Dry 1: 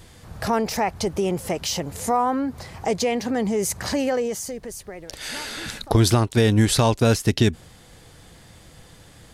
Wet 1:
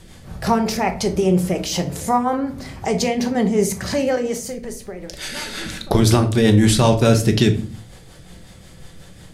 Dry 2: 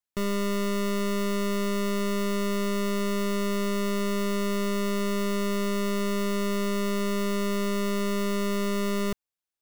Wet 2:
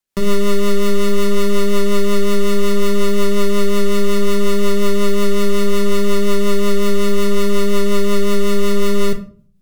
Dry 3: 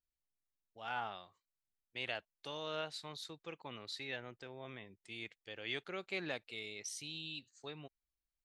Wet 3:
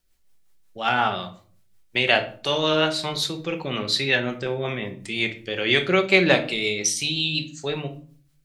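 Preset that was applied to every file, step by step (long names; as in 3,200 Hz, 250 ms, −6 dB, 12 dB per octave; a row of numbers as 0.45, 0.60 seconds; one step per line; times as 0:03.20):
rotating-speaker cabinet horn 5.5 Hz
rectangular room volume 420 cubic metres, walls furnished, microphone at 1.1 metres
normalise the peak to −3 dBFS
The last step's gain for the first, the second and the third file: +4.5, +11.0, +22.5 decibels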